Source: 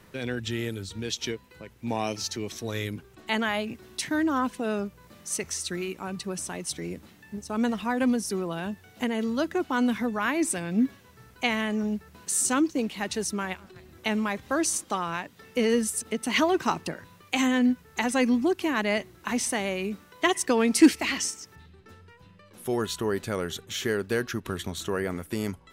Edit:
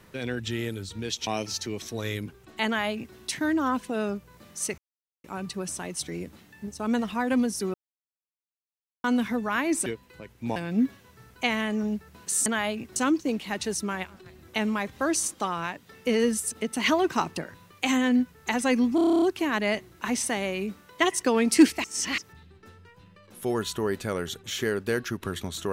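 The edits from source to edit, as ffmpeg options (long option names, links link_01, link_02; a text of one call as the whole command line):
ffmpeg -i in.wav -filter_complex "[0:a]asplit=21[link_01][link_02][link_03][link_04][link_05][link_06][link_07][link_08][link_09][link_10][link_11][link_12][link_13][link_14][link_15][link_16][link_17][link_18][link_19][link_20][link_21];[link_01]atrim=end=1.272[link_22];[link_02]atrim=start=1.968:end=5.48,asetpts=PTS-STARTPTS,afade=type=out:start_time=3.508:duration=0.004:curve=hsin[link_23];[link_03]atrim=start=5.48:end=5.94,asetpts=PTS-STARTPTS,volume=0[link_24];[link_04]atrim=start=5.94:end=8.44,asetpts=PTS-STARTPTS,afade=type=in:duration=0.004:curve=hsin,afade=type=out:start_time=2.496:duration=0.004:curve=hsin[link_25];[link_05]atrim=start=8.44:end=9.74,asetpts=PTS-STARTPTS,volume=0[link_26];[link_06]atrim=start=9.74:end=10.562,asetpts=PTS-STARTPTS,afade=type=in:duration=0.004:curve=hsin[link_27];[link_07]atrim=start=1.268:end=1.972[link_28];[link_08]atrim=start=10.558:end=12.462[link_29];[link_09]atrim=start=3.358:end=3.862[link_30];[link_10]atrim=start=12.458:end=18.482[link_31];[link_11]atrim=start=18.448:end=18.482[link_32];[link_12]atrim=start=18.448:end=18.482[link_33];[link_13]atrim=start=18.448:end=18.482[link_34];[link_14]atrim=start=18.448:end=18.482[link_35];[link_15]atrim=start=18.448:end=18.482[link_36];[link_16]atrim=start=18.448:end=18.482[link_37];[link_17]atrim=start=18.448:end=18.482[link_38];[link_18]atrim=start=18.448:end=18.482[link_39];[link_19]atrim=start=18.448:end=21.072[link_40];[link_20]atrim=start=21.068:end=21.412,asetpts=PTS-STARTPTS,areverse[link_41];[link_21]atrim=start=21.408[link_42];[link_23][link_24][link_25][link_26][link_27]concat=n=5:v=0:a=1[link_43];[link_22][link_43]acrossfade=duration=0.004:curve1=hsin:curve2=hsin[link_44];[link_44][link_28]acrossfade=duration=0.004:curve1=hsin:curve2=hsin[link_45];[link_45][link_29]acrossfade=duration=0.004:curve1=hsin:curve2=hsin[link_46];[link_46][link_30]acrossfade=duration=0.004:curve1=hsin:curve2=hsin[link_47];[link_47][link_31]acrossfade=duration=0.004:curve1=hsin:curve2=hsin[link_48];[link_48][link_32]acrossfade=duration=0.004:curve1=hsin:curve2=hsin[link_49];[link_49][link_33]acrossfade=duration=0.004:curve1=hsin:curve2=hsin[link_50];[link_50][link_34]acrossfade=duration=0.004:curve1=hsin:curve2=hsin[link_51];[link_51][link_35]acrossfade=duration=0.004:curve1=hsin:curve2=hsin[link_52];[link_52][link_36]acrossfade=duration=0.004:curve1=hsin:curve2=hsin[link_53];[link_53][link_37]acrossfade=duration=0.004:curve1=hsin:curve2=hsin[link_54];[link_54][link_38]acrossfade=duration=0.004:curve1=hsin:curve2=hsin[link_55];[link_55][link_39]acrossfade=duration=0.004:curve1=hsin:curve2=hsin[link_56];[link_56][link_40]acrossfade=duration=0.004:curve1=hsin:curve2=hsin[link_57];[link_57][link_41]acrossfade=duration=0.004:curve1=hsin:curve2=hsin[link_58];[link_58][link_42]acrossfade=duration=0.004:curve1=hsin:curve2=hsin" out.wav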